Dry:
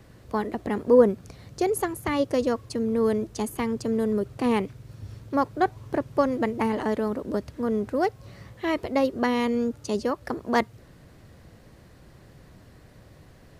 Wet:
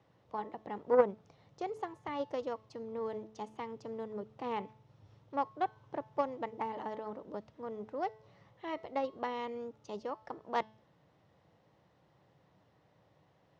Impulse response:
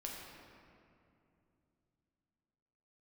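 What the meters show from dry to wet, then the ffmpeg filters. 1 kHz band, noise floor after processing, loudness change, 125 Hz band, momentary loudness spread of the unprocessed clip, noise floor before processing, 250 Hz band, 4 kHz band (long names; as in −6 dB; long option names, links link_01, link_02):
−8.0 dB, −69 dBFS, −12.5 dB, −18.5 dB, 8 LU, −52 dBFS, −18.5 dB, −14.0 dB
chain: -af "bandreject=frequency=217.7:width_type=h:width=4,bandreject=frequency=435.4:width_type=h:width=4,bandreject=frequency=653.1:width_type=h:width=4,bandreject=frequency=870.8:width_type=h:width=4,bandreject=frequency=1088.5:width_type=h:width=4,bandreject=frequency=1306.2:width_type=h:width=4,bandreject=frequency=1523.9:width_type=h:width=4,bandreject=frequency=1741.6:width_type=h:width=4,bandreject=frequency=1959.3:width_type=h:width=4,bandreject=frequency=2177:width_type=h:width=4,bandreject=frequency=2394.7:width_type=h:width=4,bandreject=frequency=2612.4:width_type=h:width=4,bandreject=frequency=2830.1:width_type=h:width=4,bandreject=frequency=3047.8:width_type=h:width=4,bandreject=frequency=3265.5:width_type=h:width=4,bandreject=frequency=3483.2:width_type=h:width=4,bandreject=frequency=3700.9:width_type=h:width=4,bandreject=frequency=3918.6:width_type=h:width=4,bandreject=frequency=4136.3:width_type=h:width=4,bandreject=frequency=4354:width_type=h:width=4,bandreject=frequency=4571.7:width_type=h:width=4,bandreject=frequency=4789.4:width_type=h:width=4,bandreject=frequency=5007.1:width_type=h:width=4,bandreject=frequency=5224.8:width_type=h:width=4,bandreject=frequency=5442.5:width_type=h:width=4,bandreject=frequency=5660.2:width_type=h:width=4,bandreject=frequency=5877.9:width_type=h:width=4,bandreject=frequency=6095.6:width_type=h:width=4,aeval=exprs='0.531*(cos(1*acos(clip(val(0)/0.531,-1,1)))-cos(1*PI/2))+0.119*(cos(3*acos(clip(val(0)/0.531,-1,1)))-cos(3*PI/2))+0.00841*(cos(5*acos(clip(val(0)/0.531,-1,1)))-cos(5*PI/2))':channel_layout=same,highpass=160,equalizer=frequency=240:width_type=q:width=4:gain=-9,equalizer=frequency=370:width_type=q:width=4:gain=-5,equalizer=frequency=860:width_type=q:width=4:gain=6,equalizer=frequency=1600:width_type=q:width=4:gain=-6,equalizer=frequency=2400:width_type=q:width=4:gain=-4,equalizer=frequency=4500:width_type=q:width=4:gain=-8,lowpass=frequency=5200:width=0.5412,lowpass=frequency=5200:width=1.3066,volume=-4.5dB"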